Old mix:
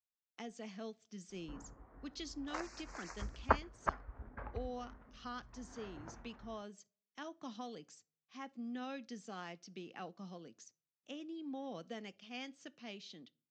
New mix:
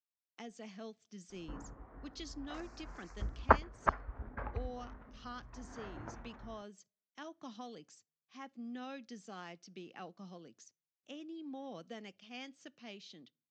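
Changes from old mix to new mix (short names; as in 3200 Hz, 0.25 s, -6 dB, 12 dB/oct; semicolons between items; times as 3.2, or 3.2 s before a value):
speech: send -6.5 dB; first sound -10.0 dB; second sound +5.0 dB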